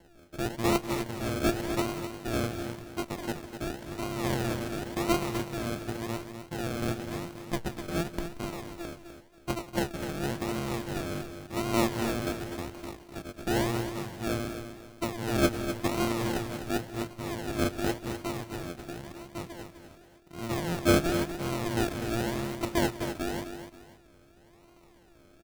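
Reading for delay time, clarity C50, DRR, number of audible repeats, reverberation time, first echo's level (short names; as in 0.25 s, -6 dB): 0.182 s, none, none, 3, none, -18.5 dB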